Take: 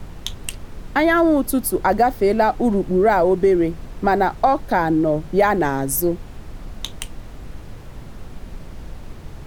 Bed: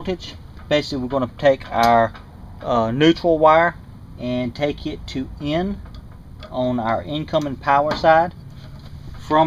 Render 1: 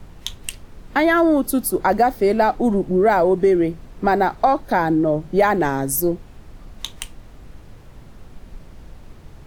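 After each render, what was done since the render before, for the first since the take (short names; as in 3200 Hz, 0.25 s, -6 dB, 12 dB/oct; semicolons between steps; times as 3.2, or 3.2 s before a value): noise print and reduce 6 dB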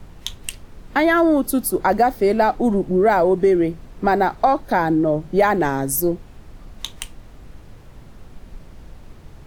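nothing audible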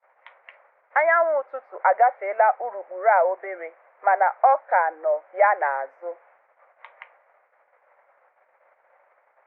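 Chebyshev band-pass 540–2200 Hz, order 4; gate -55 dBFS, range -26 dB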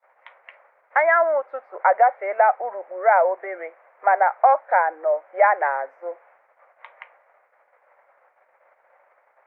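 gain +1.5 dB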